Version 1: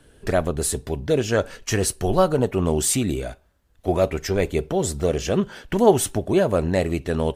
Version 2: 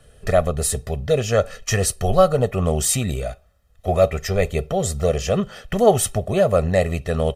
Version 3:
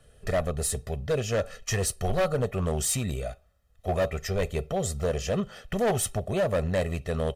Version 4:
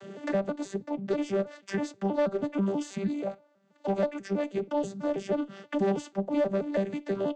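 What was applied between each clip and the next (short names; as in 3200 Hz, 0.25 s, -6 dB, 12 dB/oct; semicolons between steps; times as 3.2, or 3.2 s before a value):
comb 1.6 ms, depth 81%
overloaded stage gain 14 dB; gain -6.5 dB
arpeggiated vocoder bare fifth, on G3, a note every 0.161 s; added harmonics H 6 -35 dB, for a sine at -13 dBFS; three-band squash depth 70%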